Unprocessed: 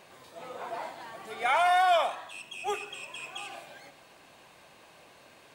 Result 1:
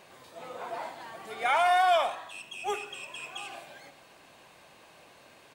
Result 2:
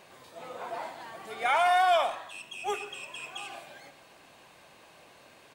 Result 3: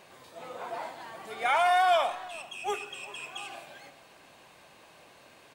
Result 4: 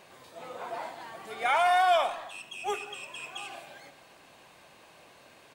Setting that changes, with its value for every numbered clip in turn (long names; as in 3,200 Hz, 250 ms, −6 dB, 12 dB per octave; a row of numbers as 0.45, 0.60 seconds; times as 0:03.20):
far-end echo of a speakerphone, delay time: 80, 140, 390, 210 milliseconds